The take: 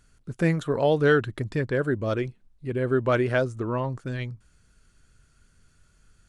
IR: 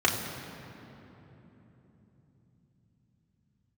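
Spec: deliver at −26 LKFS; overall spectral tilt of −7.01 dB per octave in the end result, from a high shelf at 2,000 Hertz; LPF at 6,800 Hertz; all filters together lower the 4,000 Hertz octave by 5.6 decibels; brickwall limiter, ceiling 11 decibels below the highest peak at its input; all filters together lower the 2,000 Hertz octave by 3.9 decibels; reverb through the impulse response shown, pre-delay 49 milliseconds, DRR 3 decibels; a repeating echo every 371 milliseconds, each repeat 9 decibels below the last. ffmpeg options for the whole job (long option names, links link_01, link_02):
-filter_complex "[0:a]lowpass=6800,highshelf=frequency=2000:gain=4,equalizer=frequency=2000:width_type=o:gain=-6.5,equalizer=frequency=4000:width_type=o:gain=-8.5,alimiter=limit=-21dB:level=0:latency=1,aecho=1:1:371|742|1113|1484:0.355|0.124|0.0435|0.0152,asplit=2[link_01][link_02];[1:a]atrim=start_sample=2205,adelay=49[link_03];[link_02][link_03]afir=irnorm=-1:irlink=0,volume=-17.5dB[link_04];[link_01][link_04]amix=inputs=2:normalize=0,volume=2dB"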